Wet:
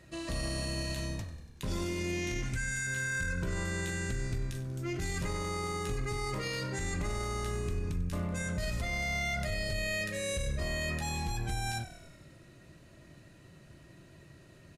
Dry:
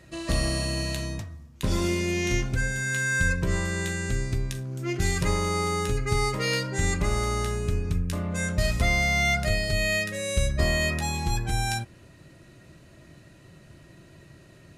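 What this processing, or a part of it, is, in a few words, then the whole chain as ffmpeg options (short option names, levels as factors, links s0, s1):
stacked limiters: -filter_complex "[0:a]asettb=1/sr,asplit=3[s0][s1][s2];[s0]atrim=end=2.434[s3];[s1]atrim=start=2.43:end=2.87,asetpts=PTS-STARTPTS,afade=t=in:d=0.004:c=qsin,afade=t=out:st=0.436:d=0.004:c=qsin,equalizer=f=500:t=o:w=1:g=-9,equalizer=f=2000:t=o:w=1:g=6,equalizer=f=8000:t=o:w=1:g=9[s4];[s2]atrim=start=2.866[s5];[s3][s4]acrossfade=d=0.004:c1=hsin:c2=qsin[s6];[s6][s5]acrossfade=d=0.004:c1=qsin:c2=hsin,alimiter=limit=0.141:level=0:latency=1:release=46,alimiter=limit=0.0841:level=0:latency=1:release=24,asplit=8[s7][s8][s9][s10][s11][s12][s13][s14];[s8]adelay=95,afreqshift=-40,volume=0.178[s15];[s9]adelay=190,afreqshift=-80,volume=0.112[s16];[s10]adelay=285,afreqshift=-120,volume=0.0708[s17];[s11]adelay=380,afreqshift=-160,volume=0.0447[s18];[s12]adelay=475,afreqshift=-200,volume=0.0279[s19];[s13]adelay=570,afreqshift=-240,volume=0.0176[s20];[s14]adelay=665,afreqshift=-280,volume=0.0111[s21];[s7][s15][s16][s17][s18][s19][s20][s21]amix=inputs=8:normalize=0,volume=0.596"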